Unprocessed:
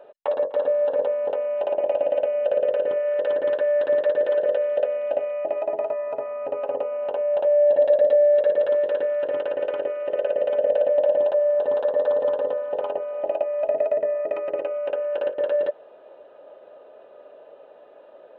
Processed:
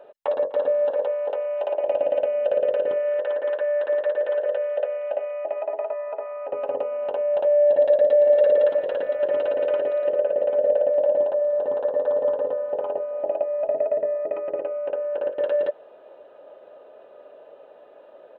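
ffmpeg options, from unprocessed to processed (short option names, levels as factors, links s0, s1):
-filter_complex "[0:a]asettb=1/sr,asplit=3[s0][s1][s2];[s0]atrim=end=0.904[s3];[s1]atrim=start=0.9:end=1.88,asetpts=PTS-STARTPTS,afade=t=in:d=0.004:c=qsin,afade=t=out:st=0.976:d=0.004:c=qsin,highpass=440[s4];[s2]atrim=start=1.876[s5];[s3][s4]acrossfade=d=0.004:c1=hsin:c2=qsin[s6];[s6][s5]acrossfade=d=0.004:c1=qsin:c2=hsin,asettb=1/sr,asplit=3[s7][s8][s9];[s7]atrim=end=3.194[s10];[s8]atrim=start=3.19:end=6.53,asetpts=PTS-STARTPTS,afade=t=in:d=0.004:c=qsin,afade=t=out:st=3.336:d=0.004:c=qsin,highpass=540,lowpass=3000[s11];[s9]atrim=start=6.526[s12];[s10][s11]acrossfade=d=0.004:c1=hsin:c2=qsin[s13];[s13][s12]acrossfade=d=0.004:c1=qsin:c2=hsin,asplit=2[s14][s15];[s15]afade=t=in:st=7.65:d=0.01,afade=t=out:st=8.18:d=0.01,aecho=0:1:510|1020|1530|2040|2550|3060|3570|4080|4590|5100|5610|6120:0.668344|0.534675|0.42774|0.342192|0.273754|0.219003|0.175202|0.140162|0.11213|0.0897036|0.0717629|0.0574103[s16];[s14][s16]amix=inputs=2:normalize=0,asettb=1/sr,asplit=3[s17][s18][s19];[s17]atrim=end=10.124[s20];[s18]atrim=start=10.12:end=15.32,asetpts=PTS-STARTPTS,afade=t=in:d=0.004:c=qsin,afade=t=out:st=5.196:d=0.004:c=qsin,lowpass=f=1200:p=1[s21];[s19]atrim=start=15.316[s22];[s20][s21]acrossfade=d=0.004:c1=hsin:c2=qsin[s23];[s23][s22]acrossfade=d=0.004:c1=qsin:c2=hsin"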